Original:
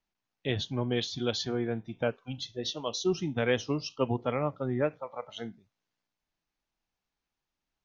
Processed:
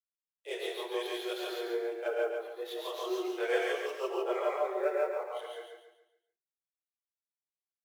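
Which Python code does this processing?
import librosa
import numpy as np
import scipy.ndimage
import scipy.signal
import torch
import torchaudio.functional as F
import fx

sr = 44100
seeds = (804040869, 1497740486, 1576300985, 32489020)

y = scipy.signal.medfilt(x, 9)
y = scipy.signal.sosfilt(scipy.signal.cheby1(8, 1.0, 350.0, 'highpass', fs=sr, output='sos'), y)
y = fx.wow_flutter(y, sr, seeds[0], rate_hz=2.1, depth_cents=17.0)
y = fx.chorus_voices(y, sr, voices=4, hz=0.53, base_ms=26, depth_ms=2.8, mix_pct=65)
y = fx.high_shelf_res(y, sr, hz=2100.0, db=-12.5, q=1.5, at=(2.08, 2.52))
y = fx.quant_companded(y, sr, bits=8)
y = fx.echo_feedback(y, sr, ms=139, feedback_pct=38, wet_db=-5.0)
y = fx.rev_gated(y, sr, seeds[1], gate_ms=190, shape='rising', drr_db=-1.0)
y = y * 10.0 ** (-1.5 / 20.0)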